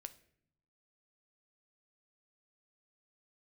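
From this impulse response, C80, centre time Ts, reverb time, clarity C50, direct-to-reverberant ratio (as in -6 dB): 20.0 dB, 4 ms, 0.65 s, 16.5 dB, 9.5 dB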